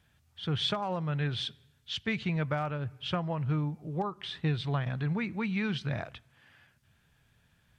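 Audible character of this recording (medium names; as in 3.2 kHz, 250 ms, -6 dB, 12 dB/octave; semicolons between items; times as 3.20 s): noise floor -69 dBFS; spectral tilt -4.5 dB/octave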